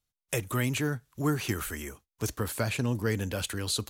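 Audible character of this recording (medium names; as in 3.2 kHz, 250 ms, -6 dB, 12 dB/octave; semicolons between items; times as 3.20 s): noise floor -91 dBFS; spectral tilt -4.5 dB/octave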